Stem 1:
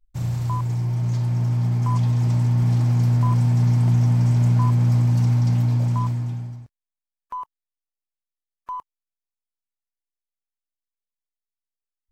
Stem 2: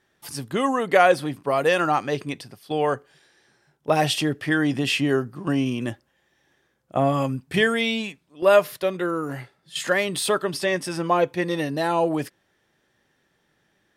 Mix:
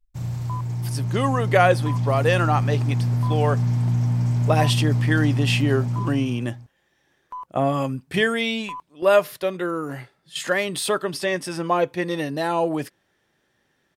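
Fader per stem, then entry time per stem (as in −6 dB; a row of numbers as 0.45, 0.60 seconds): −3.5, −0.5 decibels; 0.00, 0.60 seconds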